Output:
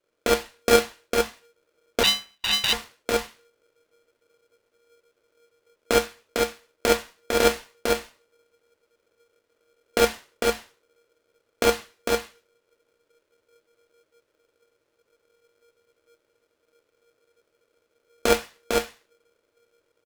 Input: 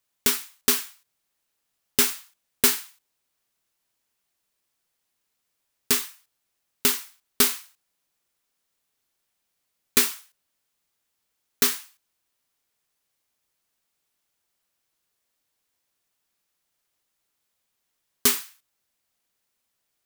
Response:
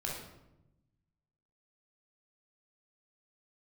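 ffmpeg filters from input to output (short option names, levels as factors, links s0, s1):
-filter_complex "[0:a]aemphasis=mode=reproduction:type=riaa,alimiter=limit=0.316:level=0:latency=1:release=97,flanger=delay=2.7:depth=4.9:regen=81:speed=1.4:shape=triangular,aecho=1:1:452:0.668[s0];[1:a]atrim=start_sample=2205,atrim=end_sample=3087,asetrate=41895,aresample=44100[s1];[s0][s1]afir=irnorm=-1:irlink=0,asettb=1/sr,asplit=3[s2][s3][s4];[s2]atrim=end=2.034[s5];[s3]atrim=start=2.03:end=2.73,asetpts=PTS-STARTPTS,afade=t=in:d=0.004:c=qsin,afade=t=out:st=0.696:d=0.004:c=qsin,lowpass=f=3000:t=q:w=0.5098,lowpass=f=3000:t=q:w=0.6013,lowpass=f=3000:t=q:w=0.9,lowpass=f=3000:t=q:w=2.563,afreqshift=-3500[s6];[s4]atrim=start=2.726[s7];[s5][s6]acrossfade=d=0.004:c1=hsin:c2=qsin[s8];[s8][s7]acrossfade=d=0.004:c1=qsin:c2=hsin,aeval=exprs='val(0)*sgn(sin(2*PI*470*n/s))':c=same,volume=2.24"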